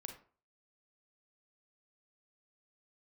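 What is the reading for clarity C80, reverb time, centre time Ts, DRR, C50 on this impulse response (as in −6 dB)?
13.0 dB, 0.40 s, 18 ms, 4.0 dB, 8.0 dB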